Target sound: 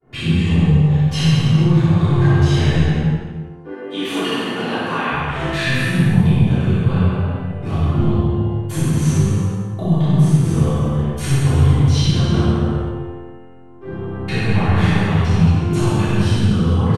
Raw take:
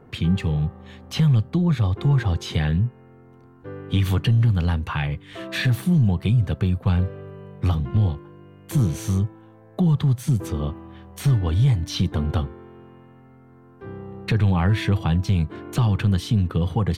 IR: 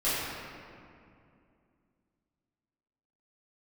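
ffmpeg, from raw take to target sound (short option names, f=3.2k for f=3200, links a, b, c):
-filter_complex "[0:a]agate=range=-33dB:threshold=-42dB:ratio=3:detection=peak,asettb=1/sr,asplit=3[a][b][c];[a]atrim=end=2.784[d];[b]atrim=start=2.78:end=5.12,asetpts=PTS-STARTPTS,afade=t=in:d=0.004:c=qsin,afade=t=out:st=2.336:d=0.004:c=qsin,highpass=f=270:w=0.5412,highpass=f=270:w=1.3066[e];[c]atrim=start=5.116[f];[d][e]acrossfade=d=0.004:c1=hsin:c2=qsin[g];[g][f]acrossfade=d=0.004:c1=qsin:c2=hsin,alimiter=limit=-20dB:level=0:latency=1:release=455,aecho=1:1:60|132|218.4|322.1|446.5:0.631|0.398|0.251|0.158|0.1[h];[1:a]atrim=start_sample=2205,afade=t=out:st=0.32:d=0.01,atrim=end_sample=14553,asetrate=23814,aresample=44100[i];[h][i]afir=irnorm=-1:irlink=0,volume=-4dB"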